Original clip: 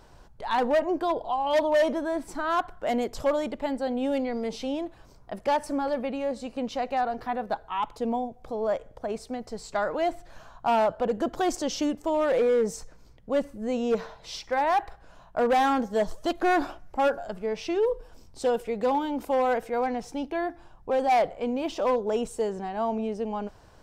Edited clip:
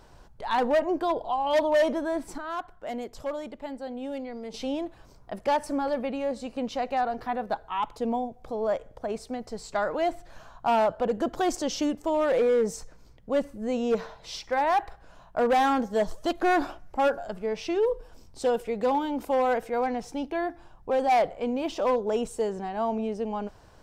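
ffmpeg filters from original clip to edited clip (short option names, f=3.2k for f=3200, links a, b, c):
-filter_complex "[0:a]asplit=3[a][b][c];[a]atrim=end=2.382[d];[b]atrim=start=2.378:end=4.542,asetpts=PTS-STARTPTS,volume=-7.5dB[e];[c]atrim=start=4.538[f];[d][e]acrossfade=d=0.004:c1=hsin:c2=hsin[g];[g][f]acrossfade=d=0.004:c1=hsin:c2=hsin"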